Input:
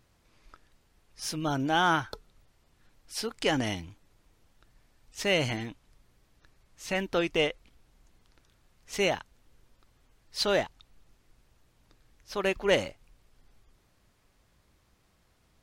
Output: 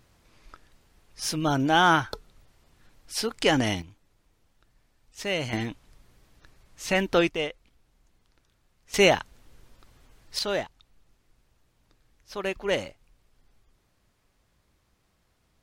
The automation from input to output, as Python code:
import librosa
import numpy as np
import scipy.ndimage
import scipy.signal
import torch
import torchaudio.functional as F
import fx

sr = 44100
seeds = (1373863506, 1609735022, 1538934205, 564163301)

y = fx.gain(x, sr, db=fx.steps((0.0, 5.0), (3.82, -2.5), (5.53, 6.0), (7.29, -3.0), (8.94, 8.0), (10.39, -2.0)))